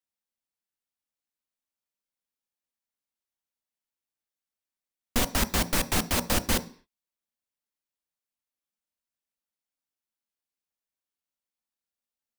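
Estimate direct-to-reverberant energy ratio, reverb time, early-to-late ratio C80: 10.0 dB, 0.45 s, 22.0 dB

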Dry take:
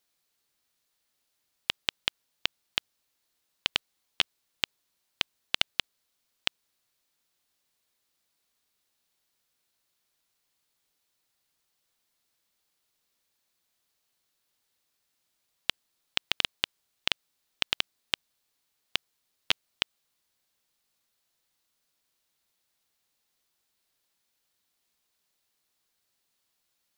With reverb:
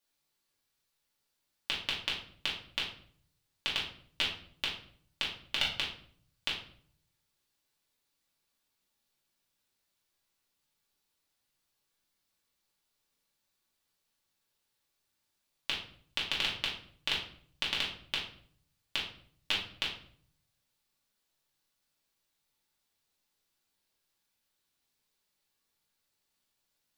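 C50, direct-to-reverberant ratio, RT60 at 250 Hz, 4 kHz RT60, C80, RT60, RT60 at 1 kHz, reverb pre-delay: 5.5 dB, −5.5 dB, 0.80 s, 0.40 s, 9.5 dB, 0.55 s, 0.50 s, 3 ms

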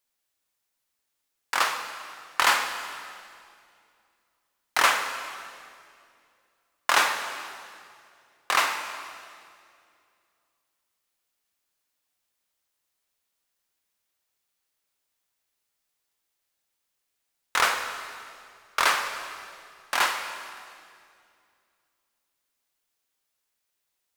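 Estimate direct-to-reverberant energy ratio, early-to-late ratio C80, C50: 5.5 dB, 8.0 dB, 7.0 dB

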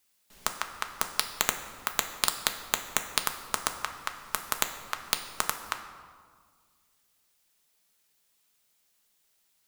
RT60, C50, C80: 1.8 s, 9.0 dB, 10.5 dB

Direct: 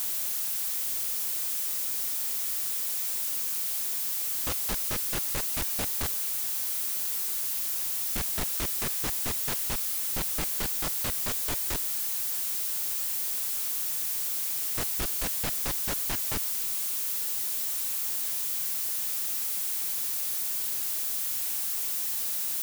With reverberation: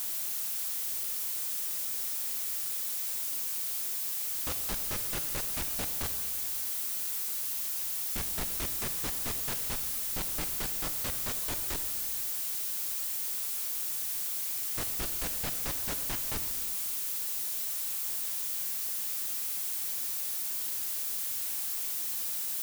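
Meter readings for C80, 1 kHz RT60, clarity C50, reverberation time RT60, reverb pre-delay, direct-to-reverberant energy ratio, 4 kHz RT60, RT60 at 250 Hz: 10.0 dB, 2.1 s, 9.0 dB, 2.1 s, 6 ms, 8.0 dB, 2.0 s, 2.2 s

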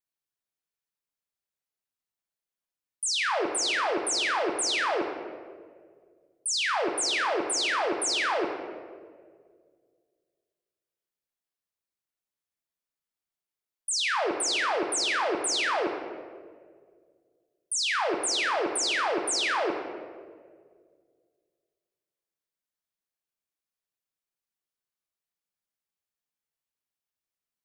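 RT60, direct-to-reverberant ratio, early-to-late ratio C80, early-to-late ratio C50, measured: 1.9 s, 2.5 dB, 7.0 dB, 5.0 dB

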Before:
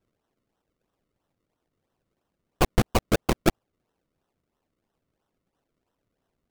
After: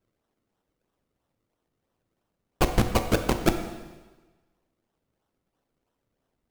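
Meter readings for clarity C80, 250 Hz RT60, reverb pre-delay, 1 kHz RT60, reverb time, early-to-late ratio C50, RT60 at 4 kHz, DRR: 10.0 dB, 1.3 s, 6 ms, 1.3 s, 1.3 s, 8.5 dB, 1.2 s, 6.5 dB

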